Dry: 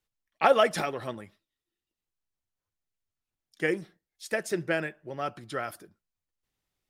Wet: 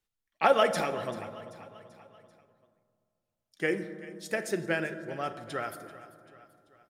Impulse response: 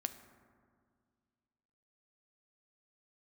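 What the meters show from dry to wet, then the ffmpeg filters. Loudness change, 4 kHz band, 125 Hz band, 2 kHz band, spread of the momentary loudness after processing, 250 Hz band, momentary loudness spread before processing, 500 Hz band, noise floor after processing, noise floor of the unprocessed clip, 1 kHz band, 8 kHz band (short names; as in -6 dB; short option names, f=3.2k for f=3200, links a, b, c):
-1.5 dB, -1.0 dB, -1.0 dB, -1.0 dB, 22 LU, -0.5 dB, 16 LU, -1.5 dB, -85 dBFS, under -85 dBFS, -1.0 dB, -1.0 dB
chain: -filter_complex "[0:a]aecho=1:1:388|776|1164|1552:0.133|0.0693|0.0361|0.0188[a];[1:a]atrim=start_sample=2205,asetrate=37485,aresample=44100[b];[a][b]afir=irnorm=-1:irlink=0,volume=-1dB"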